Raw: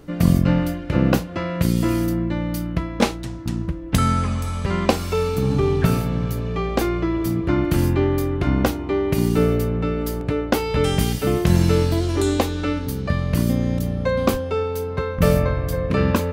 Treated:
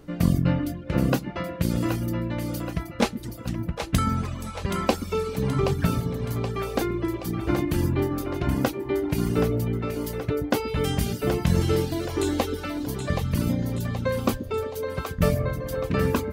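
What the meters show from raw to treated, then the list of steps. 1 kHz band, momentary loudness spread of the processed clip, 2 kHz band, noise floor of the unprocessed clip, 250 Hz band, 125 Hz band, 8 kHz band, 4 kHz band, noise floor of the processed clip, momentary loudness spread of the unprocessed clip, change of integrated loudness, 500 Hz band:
-4.5 dB, 6 LU, -4.5 dB, -30 dBFS, -5.0 dB, -5.0 dB, -4.0 dB, -4.5 dB, -37 dBFS, 7 LU, -5.0 dB, -5.0 dB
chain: split-band echo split 400 Hz, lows 0.128 s, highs 0.775 s, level -6.5 dB; reverb removal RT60 0.77 s; gain -4 dB

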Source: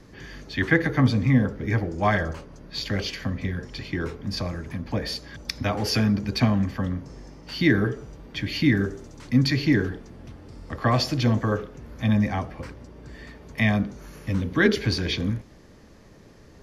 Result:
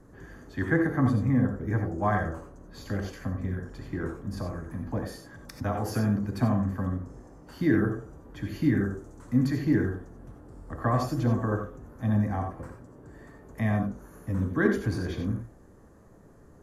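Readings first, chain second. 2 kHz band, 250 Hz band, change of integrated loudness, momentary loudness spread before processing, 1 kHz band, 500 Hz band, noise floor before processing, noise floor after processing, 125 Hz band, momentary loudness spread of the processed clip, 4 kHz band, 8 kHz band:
-8.0 dB, -3.0 dB, -4.0 dB, 19 LU, -3.0 dB, -3.5 dB, -50 dBFS, -53 dBFS, -3.5 dB, 19 LU, -18.5 dB, -8.5 dB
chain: band shelf 3400 Hz -15.5 dB; non-linear reverb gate 0.11 s rising, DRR 4 dB; gain -4.5 dB

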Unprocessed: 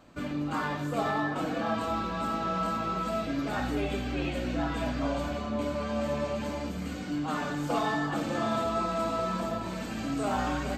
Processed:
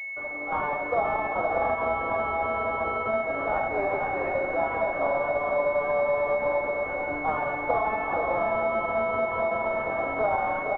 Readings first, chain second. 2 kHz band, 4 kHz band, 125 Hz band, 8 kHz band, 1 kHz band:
+8.0 dB, under -10 dB, -7.5 dB, under -25 dB, +5.5 dB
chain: HPF 550 Hz 24 dB/oct; AGC gain up to 9.5 dB; air absorption 70 m; echo 0.469 s -8.5 dB; in parallel at -10.5 dB: bit-crush 7-bit; on the sum: compressor, threshold -23 dBFS, peak gain reduction 8.5 dB; pulse-width modulation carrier 2200 Hz; gain +3 dB

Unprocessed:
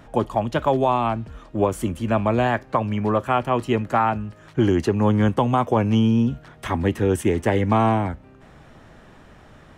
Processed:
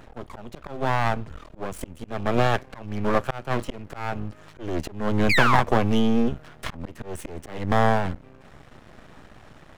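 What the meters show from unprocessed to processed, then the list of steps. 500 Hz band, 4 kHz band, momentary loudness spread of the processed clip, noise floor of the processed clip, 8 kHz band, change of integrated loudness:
-5.5 dB, +2.0 dB, 18 LU, -50 dBFS, -2.5 dB, -3.5 dB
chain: painted sound fall, 5.29–5.61, 770–2500 Hz -19 dBFS; auto swell 0.337 s; half-wave rectifier; gain +3 dB

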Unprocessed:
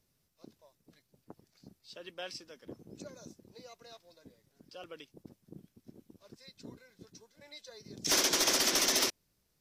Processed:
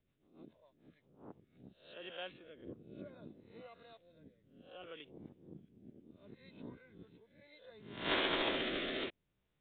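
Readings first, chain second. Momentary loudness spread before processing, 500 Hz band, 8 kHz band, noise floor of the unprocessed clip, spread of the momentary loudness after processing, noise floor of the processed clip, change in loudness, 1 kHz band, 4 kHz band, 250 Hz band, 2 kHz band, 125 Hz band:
18 LU, -2.0 dB, under -40 dB, -77 dBFS, 25 LU, -82 dBFS, -11.5 dB, -3.5 dB, -8.5 dB, -2.0 dB, -3.0 dB, -1.5 dB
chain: spectral swells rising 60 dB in 0.51 s; rotary speaker horn 7 Hz, later 0.65 Hz, at 0.67; downsampling 8000 Hz; gain -3 dB

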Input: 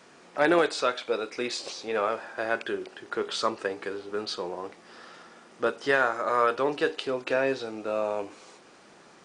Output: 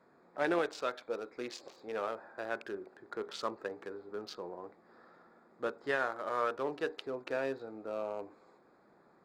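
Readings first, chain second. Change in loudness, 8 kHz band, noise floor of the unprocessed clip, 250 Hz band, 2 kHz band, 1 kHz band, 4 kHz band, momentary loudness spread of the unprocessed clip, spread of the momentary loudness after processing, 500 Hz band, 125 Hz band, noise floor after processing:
-9.5 dB, -14.0 dB, -54 dBFS, -9.0 dB, -10.0 dB, -9.5 dB, -13.0 dB, 12 LU, 12 LU, -9.0 dB, -9.0 dB, -65 dBFS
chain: Wiener smoothing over 15 samples; gain -9 dB

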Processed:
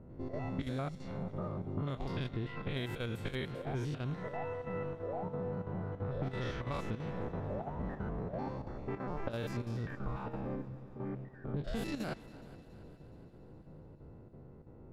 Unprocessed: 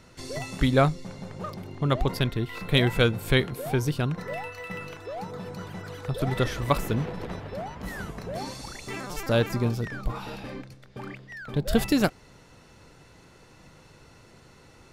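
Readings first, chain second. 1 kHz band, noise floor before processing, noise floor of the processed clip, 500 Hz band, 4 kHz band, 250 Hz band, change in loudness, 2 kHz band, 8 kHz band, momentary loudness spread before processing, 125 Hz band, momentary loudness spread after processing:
-10.5 dB, -54 dBFS, -54 dBFS, -11.0 dB, -17.0 dB, -10.5 dB, -11.5 dB, -14.5 dB, under -15 dB, 15 LU, -10.0 dB, 16 LU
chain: stepped spectrum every 0.1 s; low-pass opened by the level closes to 450 Hz, open at -21 dBFS; in parallel at -0.5 dB: limiter -21 dBFS, peak gain reduction 11.5 dB; on the sum: compressor 10:1, threshold -31 dBFS, peak gain reduction 16.5 dB; chopper 3 Hz, depth 65%, duty 85%; on a send: multi-head echo 0.14 s, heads second and third, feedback 59%, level -20 dB; on the sum: gain -2.5 dB

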